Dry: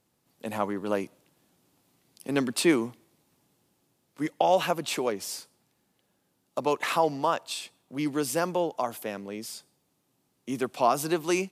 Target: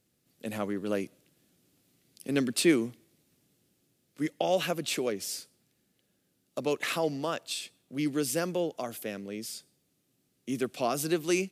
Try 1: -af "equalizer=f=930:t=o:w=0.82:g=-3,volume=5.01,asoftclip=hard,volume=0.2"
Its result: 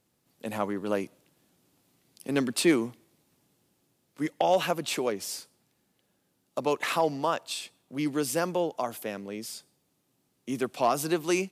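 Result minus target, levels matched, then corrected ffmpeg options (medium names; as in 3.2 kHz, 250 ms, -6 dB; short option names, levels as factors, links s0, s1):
1 kHz band +5.0 dB
-af "equalizer=f=930:t=o:w=0.82:g=-13.5,volume=5.01,asoftclip=hard,volume=0.2"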